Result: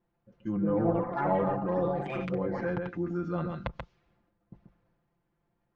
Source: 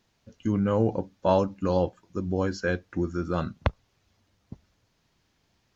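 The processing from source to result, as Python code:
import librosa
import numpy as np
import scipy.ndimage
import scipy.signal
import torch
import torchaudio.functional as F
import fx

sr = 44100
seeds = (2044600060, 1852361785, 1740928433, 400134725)

y = x + 10.0 ** (-7.5 / 20.0) * np.pad(x, (int(135 * sr / 1000.0), 0))[:len(x)]
y = fx.env_lowpass(y, sr, base_hz=1200.0, full_db=-24.0)
y = fx.transient(y, sr, attack_db=-2, sustain_db=6)
y = fx.echo_pitch(y, sr, ms=324, semitones=7, count=3, db_per_echo=-3.0)
y = fx.env_lowpass_down(y, sr, base_hz=1100.0, full_db=-20.0)
y = y + 0.77 * np.pad(y, (int(5.8 * sr / 1000.0), 0))[:len(y)]
y = y * 10.0 ** (-8.0 / 20.0)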